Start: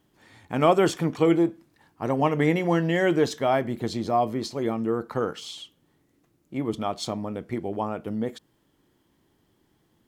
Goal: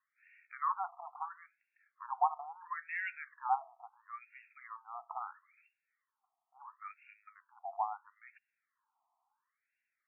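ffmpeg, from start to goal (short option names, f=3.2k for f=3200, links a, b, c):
-af "equalizer=f=1.5k:t=o:w=1:g=-12,afftfilt=real='re*between(b*sr/1024,920*pow(2000/920,0.5+0.5*sin(2*PI*0.74*pts/sr))/1.41,920*pow(2000/920,0.5+0.5*sin(2*PI*0.74*pts/sr))*1.41)':imag='im*between(b*sr/1024,920*pow(2000/920,0.5+0.5*sin(2*PI*0.74*pts/sr))/1.41,920*pow(2000/920,0.5+0.5*sin(2*PI*0.74*pts/sr))*1.41)':win_size=1024:overlap=0.75,volume=1dB"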